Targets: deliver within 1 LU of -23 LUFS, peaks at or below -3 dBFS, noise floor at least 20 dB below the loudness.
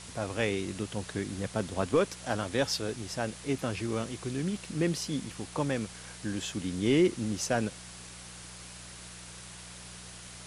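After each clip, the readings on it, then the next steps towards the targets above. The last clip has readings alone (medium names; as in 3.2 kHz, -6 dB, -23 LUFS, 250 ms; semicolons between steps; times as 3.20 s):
hum 60 Hz; highest harmonic 180 Hz; hum level -49 dBFS; noise floor -47 dBFS; noise floor target -52 dBFS; loudness -32.0 LUFS; peak level -14.5 dBFS; loudness target -23.0 LUFS
-> de-hum 60 Hz, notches 3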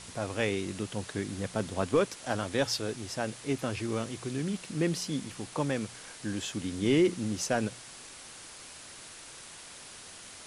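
hum not found; noise floor -48 dBFS; noise floor target -52 dBFS
-> noise reduction 6 dB, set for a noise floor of -48 dBFS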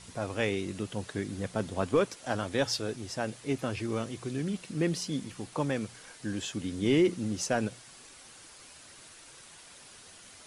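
noise floor -52 dBFS; loudness -32.0 LUFS; peak level -15.0 dBFS; loudness target -23.0 LUFS
-> trim +9 dB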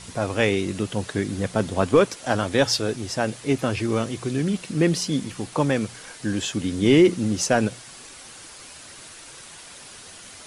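loudness -23.0 LUFS; peak level -6.0 dBFS; noise floor -43 dBFS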